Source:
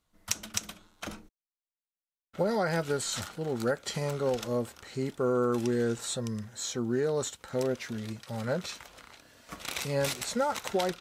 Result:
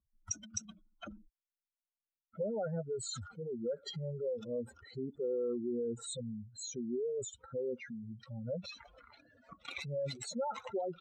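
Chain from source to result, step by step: spectral contrast raised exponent 3.4; 9.53–10.68 expander -37 dBFS; gain -7 dB

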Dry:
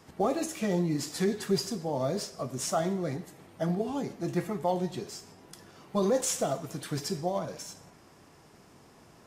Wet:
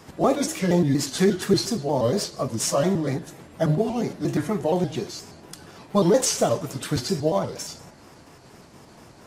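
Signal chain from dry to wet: trilling pitch shifter -2.5 st, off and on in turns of 0.118 s; gain +8.5 dB

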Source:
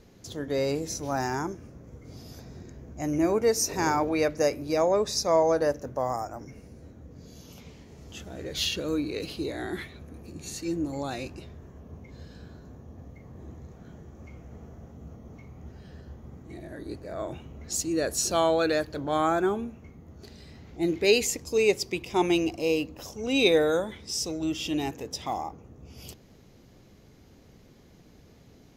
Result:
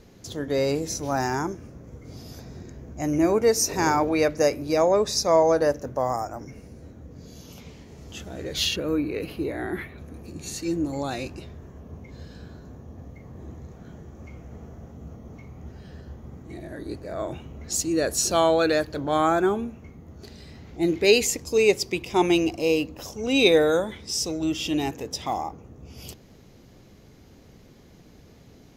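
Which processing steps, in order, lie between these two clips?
8.76–9.98 band shelf 5500 Hz -12.5 dB; gain +3.5 dB

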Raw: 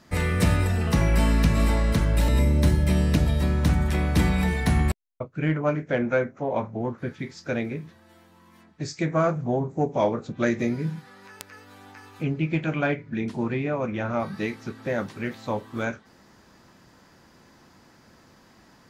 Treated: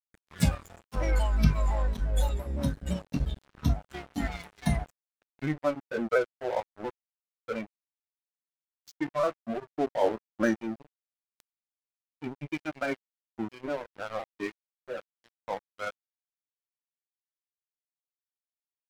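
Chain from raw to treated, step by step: repeated pitch sweeps -2 st, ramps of 0.171 s; spectral noise reduction 16 dB; crossover distortion -36 dBFS

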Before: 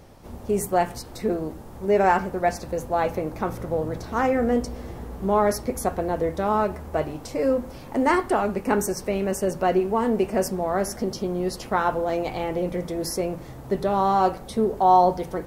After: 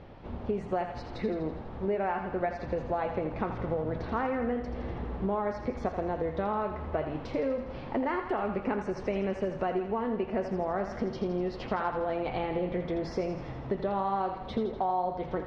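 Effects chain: LPF 3500 Hz 24 dB/oct; compressor 10:1, threshold -27 dBFS, peak gain reduction 15.5 dB; thinning echo 82 ms, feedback 64%, high-pass 520 Hz, level -7.5 dB

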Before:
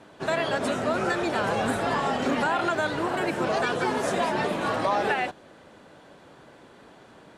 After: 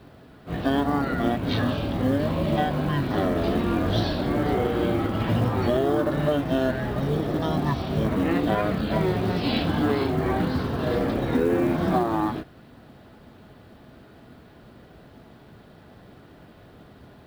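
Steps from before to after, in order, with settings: speed mistake 78 rpm record played at 33 rpm; companded quantiser 8-bit; high shelf 2600 Hz +7.5 dB; gain +2 dB

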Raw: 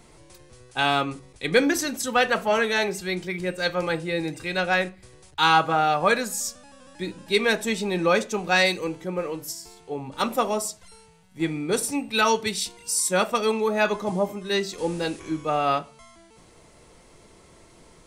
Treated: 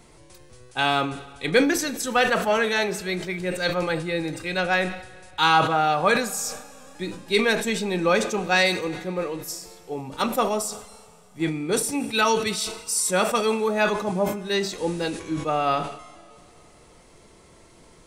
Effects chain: Schroeder reverb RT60 2.6 s, combs from 26 ms, DRR 17.5 dB; sustainer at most 85 dB/s

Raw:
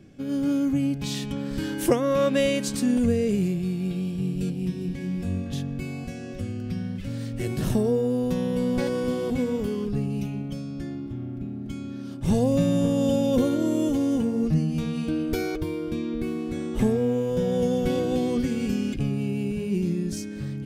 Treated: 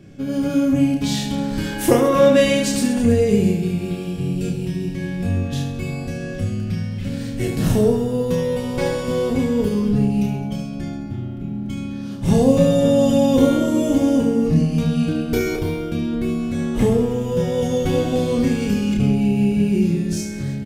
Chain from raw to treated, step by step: reverse bouncing-ball echo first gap 30 ms, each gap 1.4×, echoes 5; on a send at -8 dB: reverb RT60 0.95 s, pre-delay 7 ms; on the sum: gain +4.5 dB

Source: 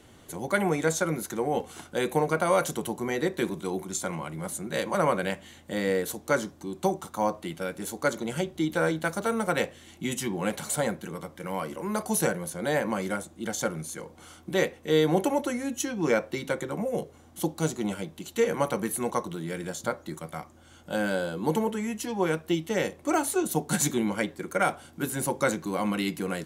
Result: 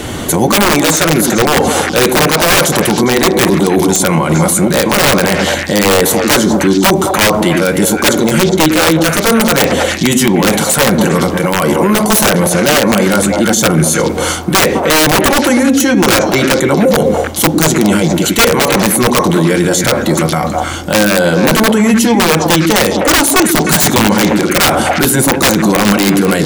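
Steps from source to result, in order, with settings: wrapped overs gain 20 dB; reverse; compressor 6:1, threshold -34 dBFS, peak gain reduction 10.5 dB; reverse; delay with a stepping band-pass 0.102 s, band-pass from 260 Hz, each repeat 1.4 oct, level -3 dB; maximiser +33.5 dB; gain -1 dB

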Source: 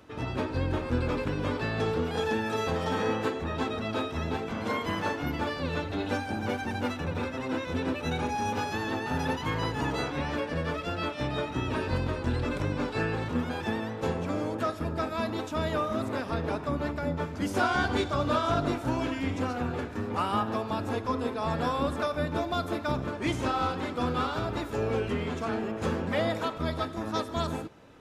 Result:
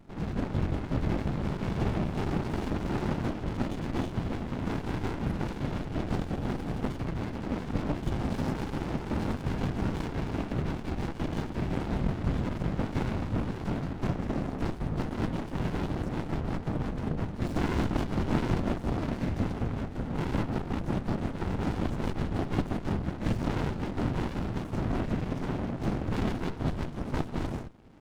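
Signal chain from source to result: formant shift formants -3 st; whisperiser; running maximum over 65 samples; gain +2 dB

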